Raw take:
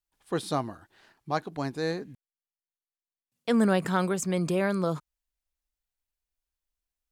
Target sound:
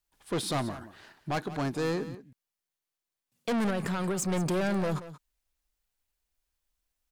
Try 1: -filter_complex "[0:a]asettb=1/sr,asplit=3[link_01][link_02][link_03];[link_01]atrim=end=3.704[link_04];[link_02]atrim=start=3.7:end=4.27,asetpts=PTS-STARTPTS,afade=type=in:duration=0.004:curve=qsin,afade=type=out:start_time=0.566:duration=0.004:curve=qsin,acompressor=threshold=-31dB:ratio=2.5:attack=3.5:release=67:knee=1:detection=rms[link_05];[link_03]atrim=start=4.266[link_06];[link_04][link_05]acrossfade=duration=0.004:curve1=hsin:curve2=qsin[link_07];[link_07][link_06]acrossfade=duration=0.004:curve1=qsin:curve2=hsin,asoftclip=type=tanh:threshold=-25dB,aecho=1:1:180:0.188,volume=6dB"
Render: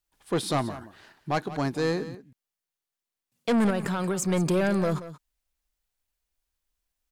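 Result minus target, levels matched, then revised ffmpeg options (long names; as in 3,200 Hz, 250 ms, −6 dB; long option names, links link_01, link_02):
soft clipping: distortion −5 dB
-filter_complex "[0:a]asettb=1/sr,asplit=3[link_01][link_02][link_03];[link_01]atrim=end=3.704[link_04];[link_02]atrim=start=3.7:end=4.27,asetpts=PTS-STARTPTS,afade=type=in:duration=0.004:curve=qsin,afade=type=out:start_time=0.566:duration=0.004:curve=qsin,acompressor=threshold=-31dB:ratio=2.5:attack=3.5:release=67:knee=1:detection=rms[link_05];[link_03]atrim=start=4.266[link_06];[link_04][link_05]acrossfade=duration=0.004:curve1=hsin:curve2=qsin[link_07];[link_07][link_06]acrossfade=duration=0.004:curve1=qsin:curve2=hsin,asoftclip=type=tanh:threshold=-32dB,aecho=1:1:180:0.188,volume=6dB"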